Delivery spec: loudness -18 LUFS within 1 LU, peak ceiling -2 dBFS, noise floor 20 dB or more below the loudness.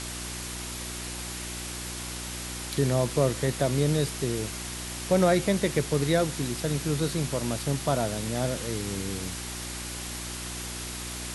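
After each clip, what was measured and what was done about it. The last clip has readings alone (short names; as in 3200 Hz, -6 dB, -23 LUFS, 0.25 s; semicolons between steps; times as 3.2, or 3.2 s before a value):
hum 60 Hz; harmonics up to 360 Hz; hum level -38 dBFS; noise floor -36 dBFS; noise floor target -49 dBFS; loudness -29.0 LUFS; peak -10.0 dBFS; loudness target -18.0 LUFS
-> de-hum 60 Hz, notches 6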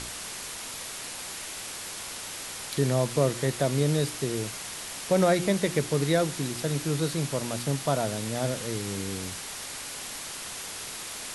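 hum none; noise floor -38 dBFS; noise floor target -49 dBFS
-> noise print and reduce 11 dB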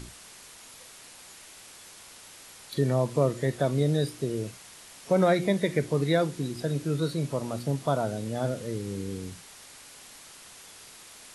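noise floor -49 dBFS; loudness -28.0 LUFS; peak -11.0 dBFS; loudness target -18.0 LUFS
-> gain +10 dB; limiter -2 dBFS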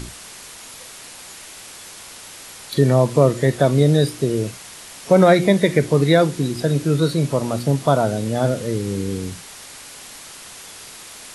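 loudness -18.0 LUFS; peak -2.0 dBFS; noise floor -39 dBFS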